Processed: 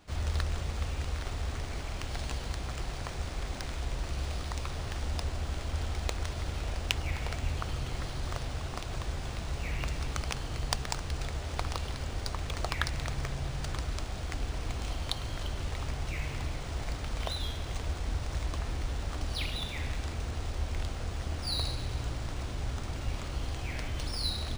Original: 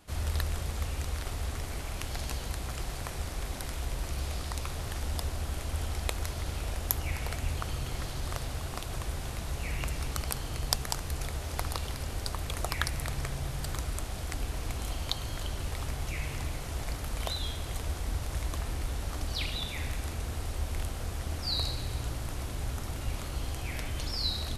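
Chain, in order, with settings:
linearly interpolated sample-rate reduction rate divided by 3×

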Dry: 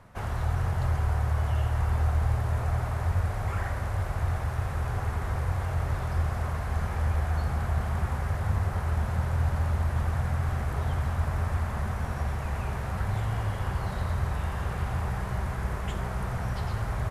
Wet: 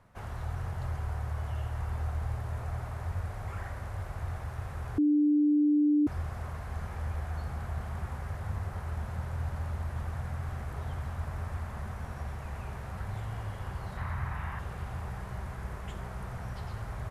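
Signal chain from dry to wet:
0:04.98–0:06.07: beep over 296 Hz −13 dBFS
0:13.97–0:14.59: octave-band graphic EQ 125/500/1,000/2,000/4,000/8,000 Hz +4/−5/+6/+8/−4/−4 dB
level −8 dB

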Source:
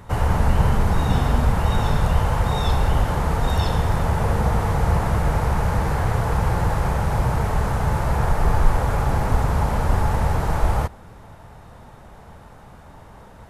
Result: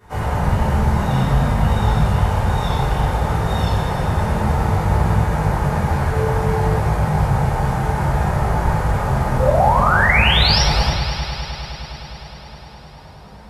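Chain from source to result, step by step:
high-pass filter 58 Hz 12 dB per octave
hard clipping −9 dBFS, distortion −40 dB
chorus effect 0.59 Hz, delay 18 ms, depth 6.3 ms
0:06.08–0:06.76: steady tone 440 Hz −31 dBFS
0:09.38–0:10.61: sound drawn into the spectrogram rise 490–5,800 Hz −21 dBFS
echo machine with several playback heads 103 ms, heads second and third, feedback 70%, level −12 dB
convolution reverb RT60 0.65 s, pre-delay 3 ms, DRR −11.5 dB
level −7.5 dB

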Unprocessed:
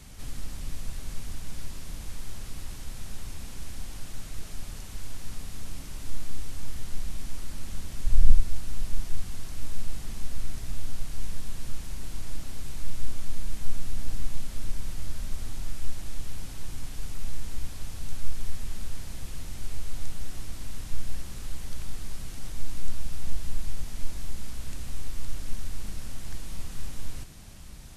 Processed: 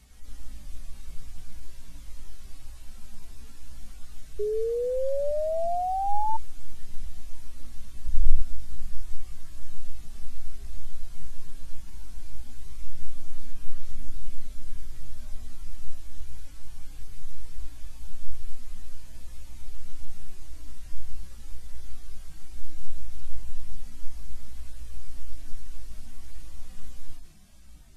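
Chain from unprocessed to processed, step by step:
harmonic-percussive split with one part muted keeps harmonic
multi-voice chorus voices 4, 0.27 Hz, delay 17 ms, depth 3.9 ms
sound drawn into the spectrogram rise, 0:04.39–0:06.37, 410–900 Hz −26 dBFS
level −1.5 dB

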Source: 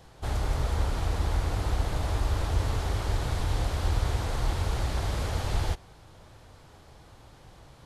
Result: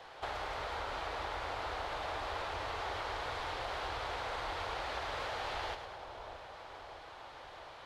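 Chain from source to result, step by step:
three-way crossover with the lows and the highs turned down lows −23 dB, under 470 Hz, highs −19 dB, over 4,300 Hz
downward compressor 6 to 1, threshold −44 dBFS, peak gain reduction 9 dB
echo with a time of its own for lows and highs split 1,000 Hz, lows 632 ms, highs 105 ms, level −8 dB
level +7 dB

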